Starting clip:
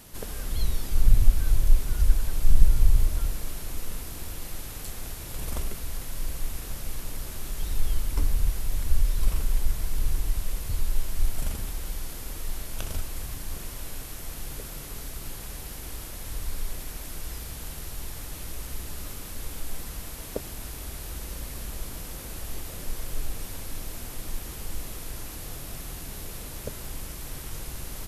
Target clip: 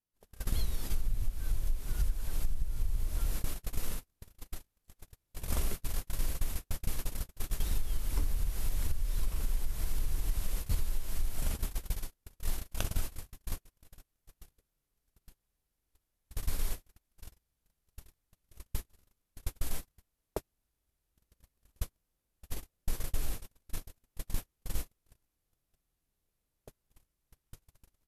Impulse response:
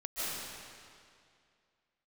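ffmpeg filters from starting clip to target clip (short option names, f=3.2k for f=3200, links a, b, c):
-af "agate=range=-50dB:threshold=-28dB:ratio=16:detection=peak,acompressor=threshold=-29dB:ratio=20,volume=4.5dB"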